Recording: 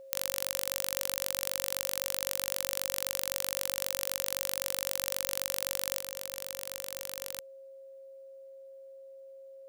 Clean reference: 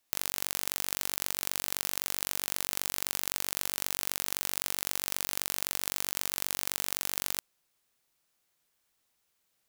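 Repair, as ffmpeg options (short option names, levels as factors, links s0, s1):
-af "bandreject=f=540:w=30,asetnsamples=n=441:p=0,asendcmd='6 volume volume 6.5dB',volume=1"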